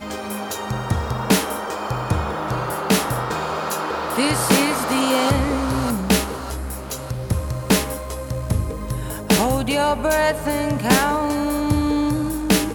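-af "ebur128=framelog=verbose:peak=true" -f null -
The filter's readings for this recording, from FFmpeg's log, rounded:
Integrated loudness:
  I:         -21.2 LUFS
  Threshold: -31.2 LUFS
Loudness range:
  LRA:         3.5 LU
  Threshold: -41.1 LUFS
  LRA low:   -23.1 LUFS
  LRA high:  -19.6 LUFS
True peak:
  Peak:       -2.4 dBFS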